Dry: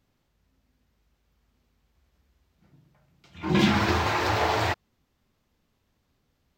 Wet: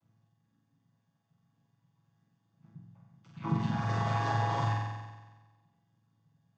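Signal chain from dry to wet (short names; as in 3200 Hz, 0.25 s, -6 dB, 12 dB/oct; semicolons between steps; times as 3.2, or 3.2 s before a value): chord vocoder major triad, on A2; reverb removal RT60 0.81 s; compressor 6:1, threshold -30 dBFS, peak gain reduction 15 dB; fifteen-band EQ 160 Hz +6 dB, 400 Hz -7 dB, 1000 Hz +7 dB, 6300 Hz +7 dB; on a send: flutter echo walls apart 7.9 m, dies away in 1.3 s; on the sum: gain -1.5 dB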